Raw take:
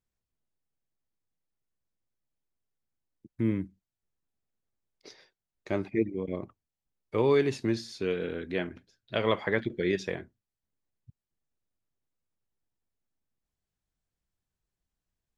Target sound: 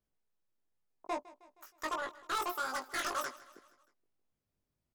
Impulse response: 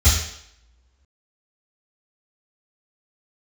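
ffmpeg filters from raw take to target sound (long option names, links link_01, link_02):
-af "asetrate=137151,aresample=44100,asoftclip=type=tanh:threshold=-29.5dB,flanger=delay=18:depth=2:speed=0.14,aecho=1:1:157|314|471|628:0.112|0.0595|0.0315|0.0167,volume=2.5dB"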